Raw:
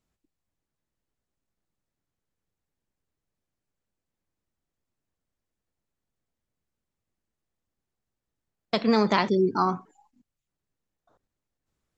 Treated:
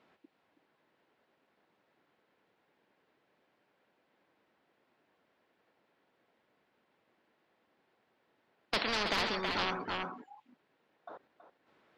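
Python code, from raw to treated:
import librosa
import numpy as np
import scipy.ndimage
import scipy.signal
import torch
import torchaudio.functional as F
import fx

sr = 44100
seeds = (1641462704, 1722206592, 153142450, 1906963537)

p1 = scipy.signal.sosfilt(scipy.signal.butter(2, 320.0, 'highpass', fs=sr, output='sos'), x)
p2 = fx.low_shelf(p1, sr, hz=470.0, db=-4.5)
p3 = fx.notch(p2, sr, hz=1200.0, q=17.0)
p4 = fx.fold_sine(p3, sr, drive_db=12, ceiling_db=-10.5)
p5 = p3 + F.gain(torch.from_numpy(p4), -10.5).numpy()
p6 = fx.air_absorb(p5, sr, metres=380.0)
p7 = p6 + fx.echo_single(p6, sr, ms=325, db=-12.0, dry=0)
p8 = fx.spectral_comp(p7, sr, ratio=4.0)
y = F.gain(torch.from_numpy(p8), -2.0).numpy()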